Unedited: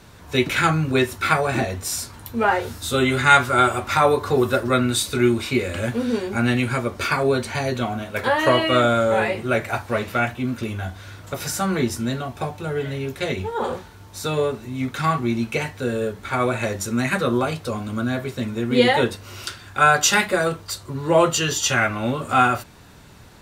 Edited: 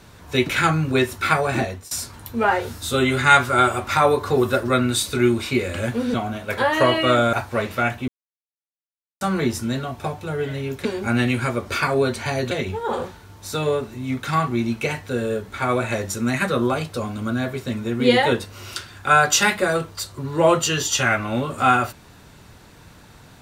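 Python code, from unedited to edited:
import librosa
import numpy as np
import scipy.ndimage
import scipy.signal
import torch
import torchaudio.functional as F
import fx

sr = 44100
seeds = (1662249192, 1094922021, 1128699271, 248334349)

y = fx.edit(x, sr, fx.fade_out_to(start_s=1.62, length_s=0.29, floor_db=-21.0),
    fx.move(start_s=6.14, length_s=1.66, to_s=13.22),
    fx.cut(start_s=8.99, length_s=0.71),
    fx.silence(start_s=10.45, length_s=1.13), tone=tone)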